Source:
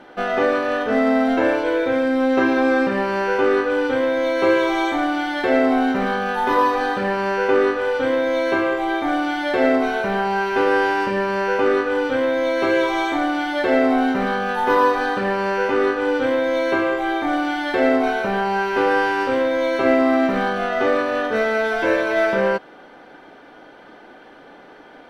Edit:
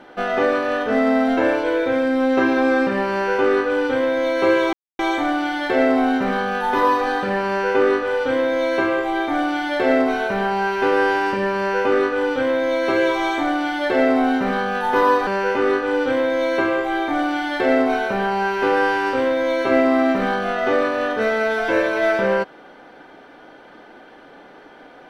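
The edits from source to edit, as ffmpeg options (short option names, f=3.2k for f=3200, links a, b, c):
-filter_complex "[0:a]asplit=3[a][b][c];[a]atrim=end=4.73,asetpts=PTS-STARTPTS,afade=t=out:st=4.726:d=0.004:c=hsin,apad=pad_dur=0.26[d];[b]atrim=start=4.73:end=15.012,asetpts=PTS-STARTPTS,afade=t=in:d=0.004:c=hsin[e];[c]atrim=start=15.408[f];[d][e]concat=n=2:v=0:a=1[g];[g][f]acrossfade=d=0.004:c1=hsin:c2=hsin"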